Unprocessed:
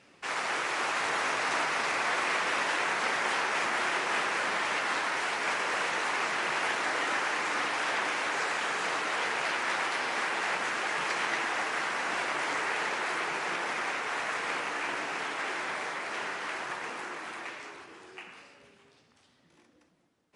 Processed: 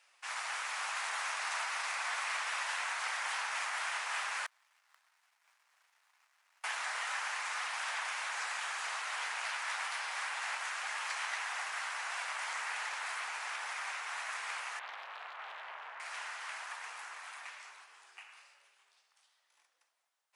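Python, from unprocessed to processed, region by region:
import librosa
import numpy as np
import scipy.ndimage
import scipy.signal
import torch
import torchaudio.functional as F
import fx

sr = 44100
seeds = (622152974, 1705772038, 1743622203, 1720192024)

y = fx.chain(x, sr, fx.gate_flip(shuts_db=-29.0, range_db=-37),
    fx.echo_single(ms=483, db=-19.5),
    fx.leveller(passes=2), at=(4.46, 6.64))
y = fx.chain(y, sr, fx.lowpass(hz=1400.0, slope=12),
    fx.doppler_dist(depth_ms=0.75), at=(14.79, 16.0))
y = scipy.signal.sosfilt(scipy.signal.butter(4, 760.0, 'highpass', fs=sr, output='sos'), y)
y = fx.high_shelf(y, sr, hz=7400.0, db=11.0)
y = y * librosa.db_to_amplitude(-7.5)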